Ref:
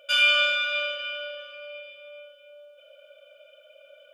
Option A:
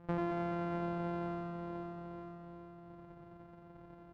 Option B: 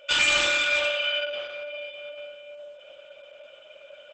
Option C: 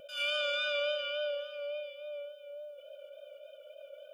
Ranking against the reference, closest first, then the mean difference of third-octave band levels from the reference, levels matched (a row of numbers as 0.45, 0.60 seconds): C, B, A; 3.0, 6.0, 16.0 decibels